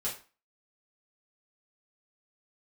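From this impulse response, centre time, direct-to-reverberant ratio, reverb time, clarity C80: 24 ms, -7.5 dB, 0.35 s, 14.0 dB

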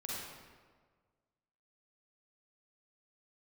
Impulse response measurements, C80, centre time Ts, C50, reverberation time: -0.5 dB, 0.111 s, -4.0 dB, 1.6 s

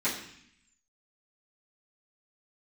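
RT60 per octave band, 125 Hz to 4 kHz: 0.95, 0.95, 0.60, 0.70, 0.90, 0.85 s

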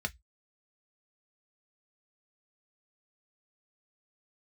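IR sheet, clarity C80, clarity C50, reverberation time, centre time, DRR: 41.5 dB, 28.0 dB, 0.10 s, 3 ms, 5.5 dB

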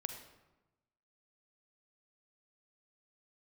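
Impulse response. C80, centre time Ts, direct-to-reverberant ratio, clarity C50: 9.0 dB, 22 ms, 6.0 dB, 7.0 dB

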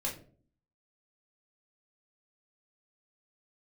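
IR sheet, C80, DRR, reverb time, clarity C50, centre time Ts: 14.0 dB, -3.5 dB, 0.45 s, 9.0 dB, 22 ms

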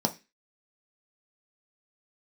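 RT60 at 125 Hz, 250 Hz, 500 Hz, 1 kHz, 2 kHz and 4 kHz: 0.30, 0.30, 0.25, 0.25, 0.35, 0.30 s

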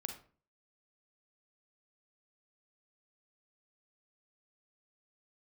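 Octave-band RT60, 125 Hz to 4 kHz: 0.55, 0.55, 0.45, 0.40, 0.35, 0.30 s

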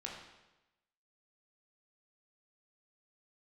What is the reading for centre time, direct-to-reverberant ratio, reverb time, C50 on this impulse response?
50 ms, -2.5 dB, 1.0 s, 2.5 dB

